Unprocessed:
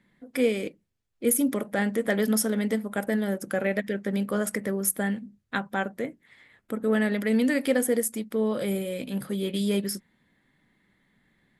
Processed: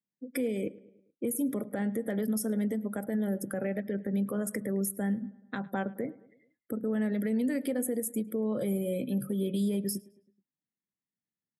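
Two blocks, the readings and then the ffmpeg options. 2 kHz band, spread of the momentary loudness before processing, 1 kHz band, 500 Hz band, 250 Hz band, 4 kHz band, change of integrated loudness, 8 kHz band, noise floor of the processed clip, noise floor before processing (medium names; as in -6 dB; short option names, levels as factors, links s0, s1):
-11.5 dB, 9 LU, -8.0 dB, -6.5 dB, -3.5 dB, under -10 dB, -5.0 dB, -8.0 dB, under -85 dBFS, -72 dBFS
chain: -filter_complex "[0:a]highpass=94,aemphasis=mode=production:type=75kf,afftdn=nr=35:nf=-38,tiltshelf=f=1400:g=8,acrossover=split=140[s0][s1];[s1]acompressor=threshold=0.0501:ratio=3[s2];[s0][s2]amix=inputs=2:normalize=0,alimiter=limit=0.106:level=0:latency=1:release=114,asplit=2[s3][s4];[s4]adelay=107,lowpass=f=3200:p=1,volume=0.0944,asplit=2[s5][s6];[s6]adelay=107,lowpass=f=3200:p=1,volume=0.55,asplit=2[s7][s8];[s8]adelay=107,lowpass=f=3200:p=1,volume=0.55,asplit=2[s9][s10];[s10]adelay=107,lowpass=f=3200:p=1,volume=0.55[s11];[s5][s7][s9][s11]amix=inputs=4:normalize=0[s12];[s3][s12]amix=inputs=2:normalize=0,volume=0.708"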